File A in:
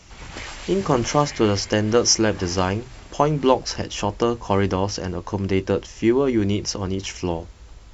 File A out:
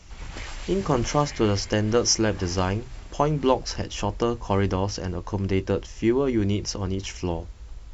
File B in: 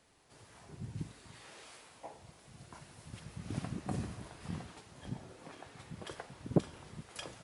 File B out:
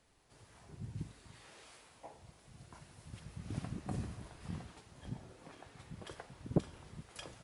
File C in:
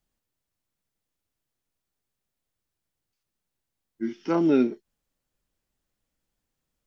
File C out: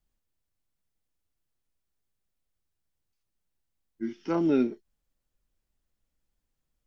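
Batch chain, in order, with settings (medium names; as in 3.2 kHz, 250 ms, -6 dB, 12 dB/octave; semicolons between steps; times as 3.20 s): bass shelf 65 Hz +11.5 dB; trim -4 dB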